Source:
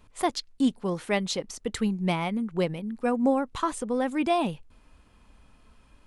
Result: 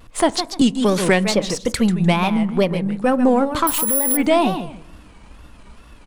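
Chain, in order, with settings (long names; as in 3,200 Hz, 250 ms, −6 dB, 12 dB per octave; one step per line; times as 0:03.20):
gain on one half-wave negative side −3 dB
repeating echo 148 ms, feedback 18%, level −10.5 dB
in parallel at −0.5 dB: downward compressor, threshold −36 dBFS, peak gain reduction 15.5 dB
on the sum: tape wow and flutter 150 cents
0:03.67–0:04.17: bad sample-rate conversion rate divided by 4×, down none, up zero stuff
on a send at −19 dB: convolution reverb RT60 1.1 s, pre-delay 8 ms
on the sum: boost into a limiter +13 dB
0:00.61–0:01.54: multiband upward and downward compressor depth 100%
level −4.5 dB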